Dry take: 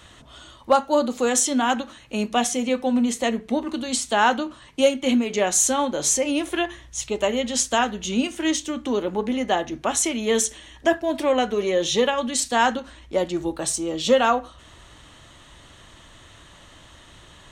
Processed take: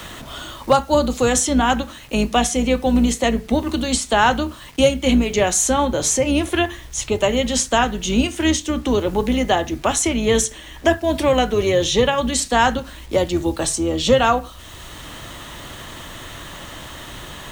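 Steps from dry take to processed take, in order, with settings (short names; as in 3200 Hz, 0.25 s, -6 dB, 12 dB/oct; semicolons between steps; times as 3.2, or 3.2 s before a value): octaver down 2 oct, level -4 dB; bit-crush 9-bit; three-band squash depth 40%; gain +4 dB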